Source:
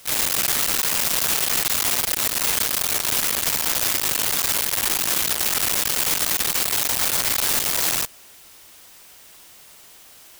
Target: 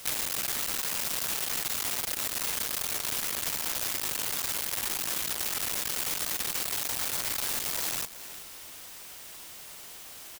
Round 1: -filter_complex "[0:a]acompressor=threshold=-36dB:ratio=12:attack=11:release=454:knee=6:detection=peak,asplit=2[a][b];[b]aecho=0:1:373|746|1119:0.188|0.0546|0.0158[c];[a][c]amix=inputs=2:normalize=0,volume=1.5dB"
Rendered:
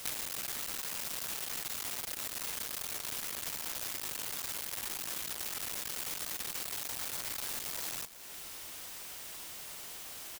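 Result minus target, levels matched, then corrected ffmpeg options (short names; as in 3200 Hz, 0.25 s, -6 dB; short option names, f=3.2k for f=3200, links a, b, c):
compressor: peak gain reduction +7.5 dB
-filter_complex "[0:a]acompressor=threshold=-28dB:ratio=12:attack=11:release=454:knee=6:detection=peak,asplit=2[a][b];[b]aecho=0:1:373|746|1119:0.188|0.0546|0.0158[c];[a][c]amix=inputs=2:normalize=0,volume=1.5dB"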